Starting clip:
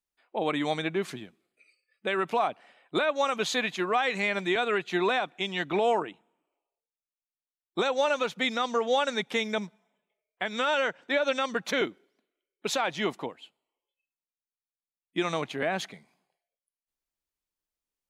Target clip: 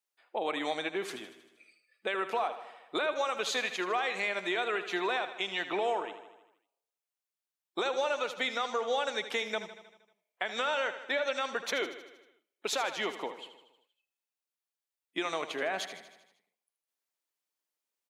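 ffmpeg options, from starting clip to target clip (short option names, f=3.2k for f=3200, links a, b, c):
-af "highpass=390,acompressor=threshold=-34dB:ratio=2,aecho=1:1:78|156|234|312|390|468|546:0.251|0.151|0.0904|0.0543|0.0326|0.0195|0.0117,volume=1.5dB"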